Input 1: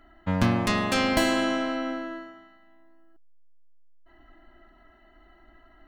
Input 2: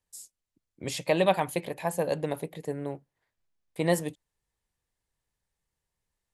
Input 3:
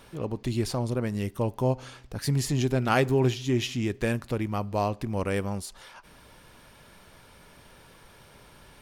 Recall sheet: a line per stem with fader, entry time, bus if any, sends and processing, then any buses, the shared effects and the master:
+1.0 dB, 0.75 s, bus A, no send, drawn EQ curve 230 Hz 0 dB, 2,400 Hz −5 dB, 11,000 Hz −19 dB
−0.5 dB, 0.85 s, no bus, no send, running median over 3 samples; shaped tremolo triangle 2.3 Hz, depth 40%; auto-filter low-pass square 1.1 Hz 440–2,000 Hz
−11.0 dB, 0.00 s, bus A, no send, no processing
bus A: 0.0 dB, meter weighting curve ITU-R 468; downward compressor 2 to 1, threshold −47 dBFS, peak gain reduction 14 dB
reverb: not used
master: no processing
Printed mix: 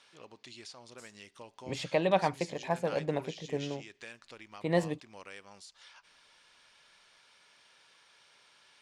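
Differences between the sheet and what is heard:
stem 1: muted
stem 2: missing auto-filter low-pass square 1.1 Hz 440–2,000 Hz
master: extra high-frequency loss of the air 81 metres

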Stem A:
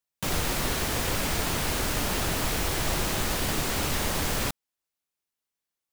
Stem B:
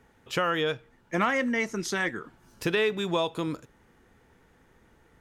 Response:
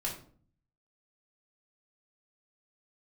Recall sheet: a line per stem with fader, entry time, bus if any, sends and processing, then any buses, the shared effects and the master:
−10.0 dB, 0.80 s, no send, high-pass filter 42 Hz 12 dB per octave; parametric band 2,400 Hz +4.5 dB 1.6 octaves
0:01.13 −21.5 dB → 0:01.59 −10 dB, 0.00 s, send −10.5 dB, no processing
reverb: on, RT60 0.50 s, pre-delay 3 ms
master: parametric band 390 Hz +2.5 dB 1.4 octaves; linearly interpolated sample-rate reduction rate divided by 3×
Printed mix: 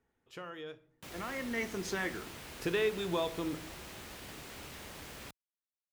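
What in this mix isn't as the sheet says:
stem A −10.0 dB → −21.0 dB
master: missing linearly interpolated sample-rate reduction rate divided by 3×

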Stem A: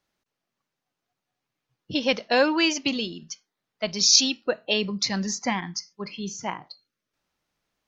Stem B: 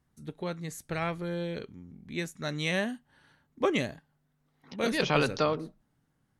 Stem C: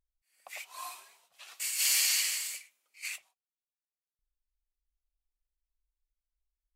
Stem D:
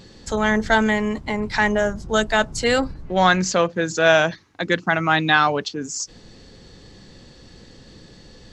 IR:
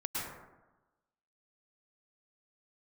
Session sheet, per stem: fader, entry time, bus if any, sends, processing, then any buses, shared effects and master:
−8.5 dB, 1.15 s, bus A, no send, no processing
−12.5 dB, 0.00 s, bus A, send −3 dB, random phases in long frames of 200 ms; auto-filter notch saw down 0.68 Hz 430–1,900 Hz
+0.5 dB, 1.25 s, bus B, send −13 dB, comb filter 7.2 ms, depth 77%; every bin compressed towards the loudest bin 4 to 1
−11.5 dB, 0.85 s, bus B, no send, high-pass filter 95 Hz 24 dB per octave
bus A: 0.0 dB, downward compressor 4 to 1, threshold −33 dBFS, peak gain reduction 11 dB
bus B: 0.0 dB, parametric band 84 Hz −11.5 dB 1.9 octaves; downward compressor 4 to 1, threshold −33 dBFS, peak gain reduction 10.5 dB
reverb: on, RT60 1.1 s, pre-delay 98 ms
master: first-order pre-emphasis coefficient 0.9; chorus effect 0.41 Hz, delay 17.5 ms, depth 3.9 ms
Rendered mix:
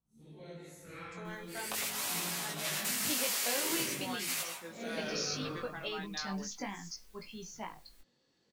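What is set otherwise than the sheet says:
stem D −11.5 dB → −22.5 dB
master: missing first-order pre-emphasis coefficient 0.9

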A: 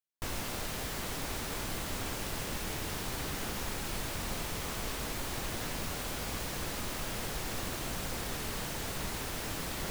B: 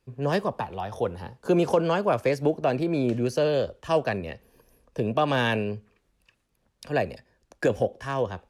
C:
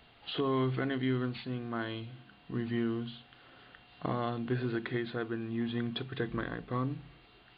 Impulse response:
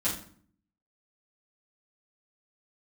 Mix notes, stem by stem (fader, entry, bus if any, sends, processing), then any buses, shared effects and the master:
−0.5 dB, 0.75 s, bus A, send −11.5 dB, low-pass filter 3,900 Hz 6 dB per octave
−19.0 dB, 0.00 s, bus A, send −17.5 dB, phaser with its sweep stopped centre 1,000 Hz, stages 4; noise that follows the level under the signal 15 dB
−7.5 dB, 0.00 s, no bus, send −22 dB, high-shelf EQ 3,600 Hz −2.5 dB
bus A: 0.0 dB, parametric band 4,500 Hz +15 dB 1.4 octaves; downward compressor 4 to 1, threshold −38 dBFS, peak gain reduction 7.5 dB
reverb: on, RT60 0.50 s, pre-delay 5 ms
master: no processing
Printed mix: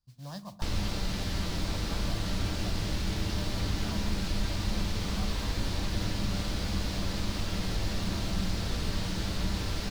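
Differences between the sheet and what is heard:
stem A: entry 0.75 s → 0.40 s
stem C: muted
master: extra low-shelf EQ 210 Hz +11.5 dB

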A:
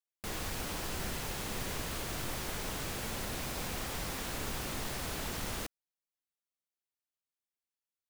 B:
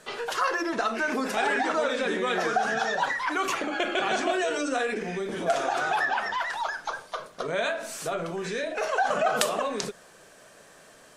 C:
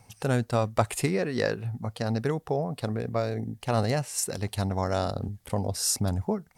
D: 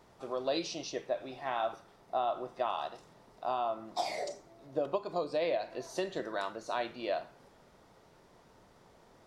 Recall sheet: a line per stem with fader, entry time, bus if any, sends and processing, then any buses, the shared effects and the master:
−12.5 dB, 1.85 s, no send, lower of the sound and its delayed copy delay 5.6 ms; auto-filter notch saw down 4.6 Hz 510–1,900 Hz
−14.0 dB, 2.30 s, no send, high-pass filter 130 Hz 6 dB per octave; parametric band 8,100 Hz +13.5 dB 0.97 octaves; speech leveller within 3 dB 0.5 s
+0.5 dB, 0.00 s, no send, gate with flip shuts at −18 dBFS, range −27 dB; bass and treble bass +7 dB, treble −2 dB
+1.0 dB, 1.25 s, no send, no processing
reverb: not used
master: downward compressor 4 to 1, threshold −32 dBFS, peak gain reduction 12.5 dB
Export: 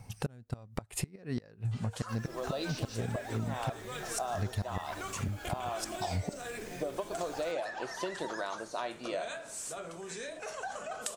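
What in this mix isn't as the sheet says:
stem A: missing lower of the sound and its delayed copy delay 5.6 ms
stem B: entry 2.30 s → 1.65 s
stem D: entry 1.25 s → 2.05 s

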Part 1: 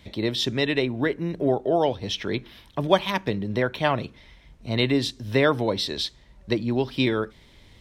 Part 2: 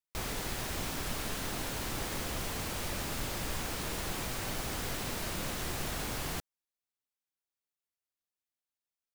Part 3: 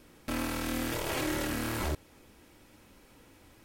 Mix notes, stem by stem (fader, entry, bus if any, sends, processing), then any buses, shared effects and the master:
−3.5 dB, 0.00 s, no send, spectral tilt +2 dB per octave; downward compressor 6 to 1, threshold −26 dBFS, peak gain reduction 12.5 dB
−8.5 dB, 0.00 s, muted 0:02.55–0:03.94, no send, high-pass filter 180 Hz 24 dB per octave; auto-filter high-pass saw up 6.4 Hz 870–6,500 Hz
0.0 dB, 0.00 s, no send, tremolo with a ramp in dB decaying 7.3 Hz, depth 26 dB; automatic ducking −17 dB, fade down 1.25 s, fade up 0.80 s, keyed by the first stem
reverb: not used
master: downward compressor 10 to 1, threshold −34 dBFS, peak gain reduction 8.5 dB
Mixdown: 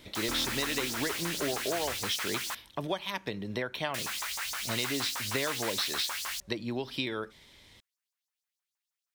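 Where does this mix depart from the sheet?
stem 2 −8.5 dB → +2.0 dB
stem 3: missing tremolo with a ramp in dB decaying 7.3 Hz, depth 26 dB
master: missing downward compressor 10 to 1, threshold −34 dBFS, peak gain reduction 8.5 dB

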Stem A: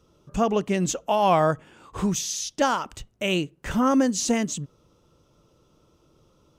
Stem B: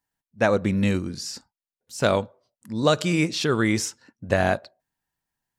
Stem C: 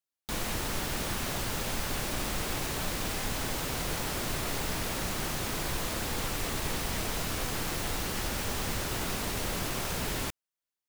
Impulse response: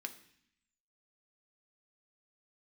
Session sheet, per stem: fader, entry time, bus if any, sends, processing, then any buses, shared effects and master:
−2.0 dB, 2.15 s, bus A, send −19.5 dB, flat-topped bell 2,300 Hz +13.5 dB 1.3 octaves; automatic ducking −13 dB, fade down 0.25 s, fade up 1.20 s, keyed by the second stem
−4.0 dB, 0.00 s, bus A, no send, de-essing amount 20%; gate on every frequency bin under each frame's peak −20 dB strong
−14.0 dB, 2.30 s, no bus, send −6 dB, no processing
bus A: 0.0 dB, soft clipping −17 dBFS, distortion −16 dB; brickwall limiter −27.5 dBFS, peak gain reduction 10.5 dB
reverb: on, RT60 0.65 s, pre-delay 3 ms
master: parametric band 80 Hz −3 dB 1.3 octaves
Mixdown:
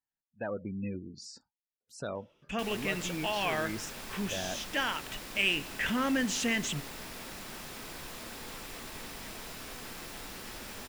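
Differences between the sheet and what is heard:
stem B −4.0 dB → −13.5 dB
reverb return +6.0 dB

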